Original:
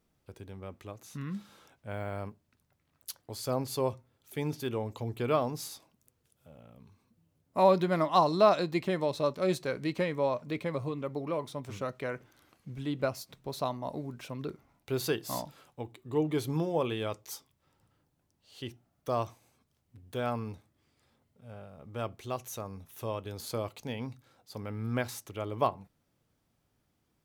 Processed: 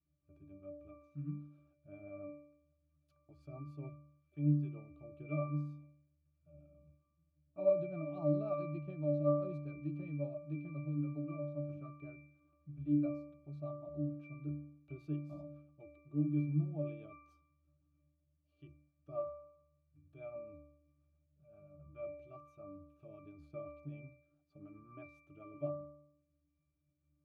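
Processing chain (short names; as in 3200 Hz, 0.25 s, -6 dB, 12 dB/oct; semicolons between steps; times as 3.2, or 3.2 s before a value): rotary speaker horn 7.5 Hz; dynamic EQ 1500 Hz, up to -5 dB, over -50 dBFS, Q 1.5; octave resonator D, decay 0.71 s; gain +11 dB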